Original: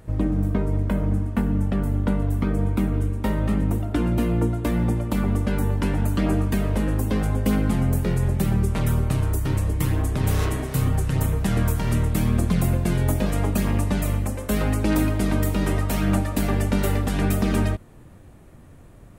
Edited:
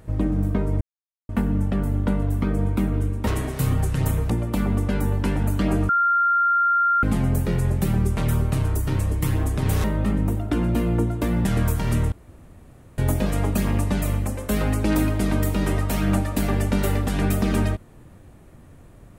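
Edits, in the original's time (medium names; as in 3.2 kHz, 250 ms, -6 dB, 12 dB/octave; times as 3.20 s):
0.81–1.29 s: mute
3.27–4.88 s: swap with 10.42–11.45 s
6.47–7.61 s: bleep 1.39 kHz -16 dBFS
12.12–12.98 s: room tone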